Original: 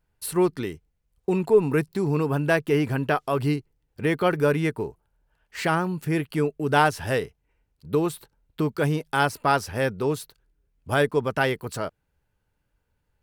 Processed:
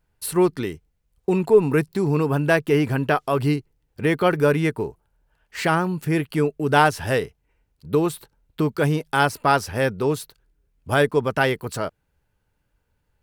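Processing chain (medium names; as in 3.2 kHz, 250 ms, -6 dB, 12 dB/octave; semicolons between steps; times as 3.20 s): trim +3 dB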